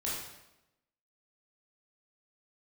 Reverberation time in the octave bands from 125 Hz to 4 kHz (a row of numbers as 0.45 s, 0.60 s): 0.95 s, 1.0 s, 0.95 s, 0.90 s, 0.85 s, 0.75 s